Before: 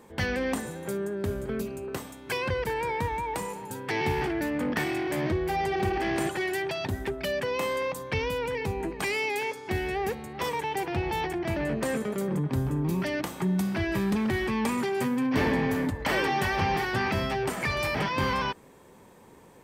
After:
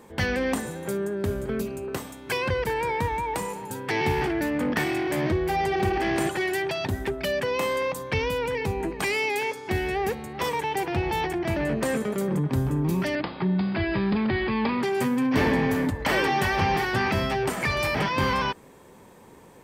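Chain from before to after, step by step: 13.15–14.83 s: Chebyshev low-pass 5 kHz, order 10; trim +3 dB

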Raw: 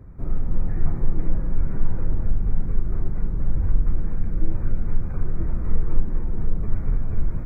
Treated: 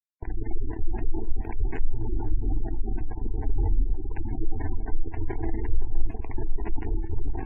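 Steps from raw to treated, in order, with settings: spectral noise reduction 6 dB; chorus voices 2, 0.97 Hz, delay 22 ms, depth 3 ms; in parallel at -1 dB: peak limiter -18 dBFS, peak gain reduction 8.5 dB; on the sum: bit crusher 4-bit; static phaser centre 830 Hz, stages 8; feedback comb 110 Hz, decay 0.73 s, harmonics all, mix 70%; spectral gate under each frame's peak -25 dB strong; bucket-brigade echo 515 ms, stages 4096, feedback 35%, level -13 dB; trim +6 dB

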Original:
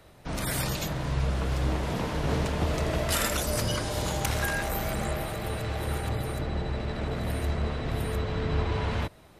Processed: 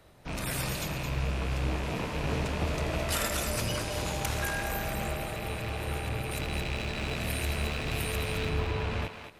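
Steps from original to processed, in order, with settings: rattle on loud lows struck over -34 dBFS, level -26 dBFS; 6.31–8.49 s: treble shelf 3.1 kHz +11.5 dB; thinning echo 218 ms, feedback 22%, high-pass 420 Hz, level -7 dB; trim -3.5 dB

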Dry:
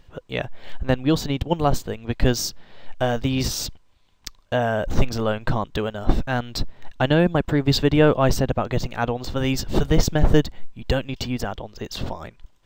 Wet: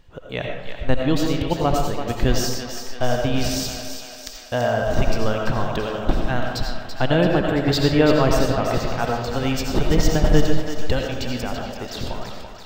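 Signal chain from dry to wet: thinning echo 335 ms, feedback 61%, high-pass 420 Hz, level -8 dB; on a send at -1.5 dB: reverberation RT60 0.85 s, pre-delay 45 ms; on the sum: trim -1.5 dB

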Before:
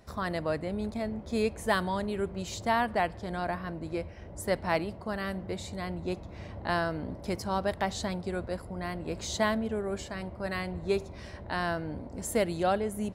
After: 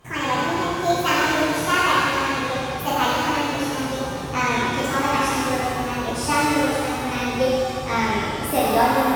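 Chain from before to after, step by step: gliding tape speed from 163% -> 124%; pitch-shifted reverb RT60 2 s, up +7 st, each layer -8 dB, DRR -8.5 dB; trim +1 dB

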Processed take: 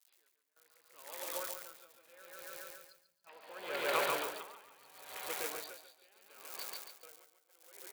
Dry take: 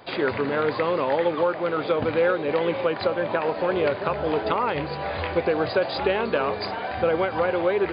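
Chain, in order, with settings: Doppler pass-by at 3.53 s, 13 m/s, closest 3.9 m; treble shelf 3.5 kHz -7 dB; delay 761 ms -15 dB; in parallel at -11 dB: saturation -27.5 dBFS, distortion -8 dB; on the sum: time-frequency box 2.33–3.27 s, 230–4100 Hz -22 dB; crackle 160 per s -37 dBFS; gate with hold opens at -29 dBFS; differentiator; on a send: feedback delay 140 ms, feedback 55%, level -3 dB; on the sum: level rider gain up to 4 dB; logarithmic tremolo 0.74 Hz, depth 25 dB; trim +9.5 dB

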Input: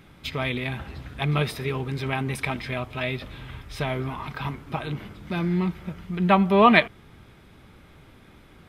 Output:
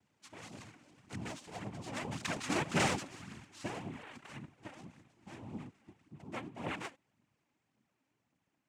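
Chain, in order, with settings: Doppler pass-by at 2.74 s, 27 m/s, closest 5.2 m; noise-vocoded speech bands 4; phaser 1.8 Hz, delay 3.9 ms, feedback 44%; trim -1 dB

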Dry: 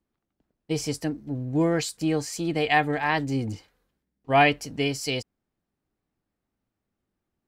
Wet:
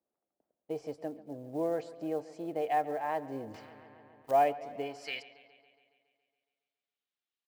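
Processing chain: band-pass sweep 610 Hz -> 3.4 kHz, 4.79–5.32 s; in parallel at 0 dB: compression 5:1, threshold -41 dBFS, peak gain reduction 19.5 dB; on the sum: speakerphone echo 280 ms, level -26 dB; short-mantissa float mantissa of 4-bit; on a send: bucket-brigade echo 139 ms, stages 4096, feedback 64%, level -18 dB; 3.54–4.31 s: on the sum: spectrum-flattening compressor 2:1; trim -4 dB

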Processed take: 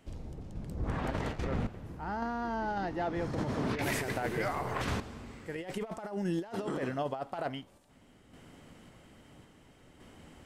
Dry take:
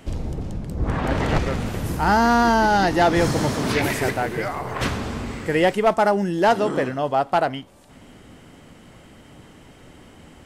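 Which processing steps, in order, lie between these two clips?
random-step tremolo 1.8 Hz, depth 75%; compressor with a negative ratio -24 dBFS, ratio -0.5; 1.44–3.79 s: low-pass 1.7 kHz 6 dB/octave; trim -8.5 dB

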